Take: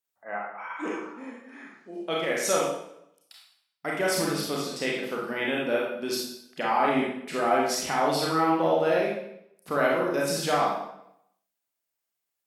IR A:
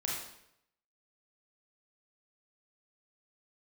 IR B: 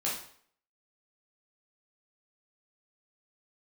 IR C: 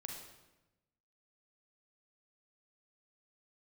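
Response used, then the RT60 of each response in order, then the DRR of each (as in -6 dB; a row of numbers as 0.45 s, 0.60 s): A; 0.75 s, 0.55 s, 1.0 s; -4.0 dB, -6.0 dB, 1.0 dB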